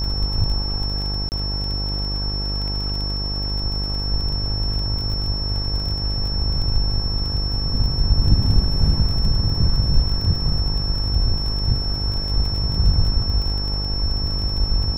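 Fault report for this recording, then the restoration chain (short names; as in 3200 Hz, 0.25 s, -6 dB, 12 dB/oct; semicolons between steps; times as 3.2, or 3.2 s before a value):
buzz 50 Hz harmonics 22 -25 dBFS
crackle 21/s -26 dBFS
tone 5400 Hz -26 dBFS
1.29–1.32 gap 29 ms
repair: de-click; notch 5400 Hz, Q 30; de-hum 50 Hz, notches 22; interpolate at 1.29, 29 ms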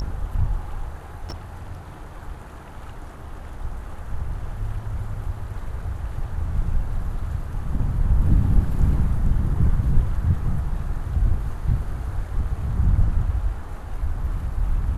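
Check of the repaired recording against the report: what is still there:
tone 5400 Hz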